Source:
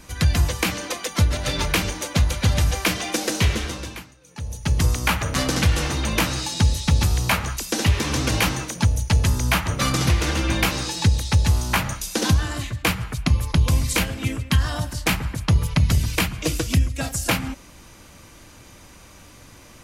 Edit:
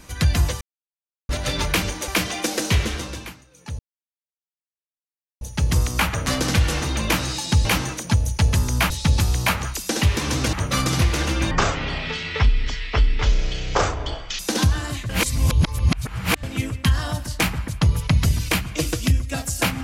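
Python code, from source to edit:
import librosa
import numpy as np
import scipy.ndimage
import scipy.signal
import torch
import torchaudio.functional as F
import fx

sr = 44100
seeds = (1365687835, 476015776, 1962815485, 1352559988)

y = fx.edit(x, sr, fx.silence(start_s=0.61, length_s=0.68),
    fx.cut(start_s=2.08, length_s=0.7),
    fx.insert_silence(at_s=4.49, length_s=1.62),
    fx.move(start_s=8.36, length_s=1.25, to_s=6.73),
    fx.speed_span(start_s=10.59, length_s=1.47, speed=0.51),
    fx.reverse_span(start_s=12.76, length_s=1.34), tone=tone)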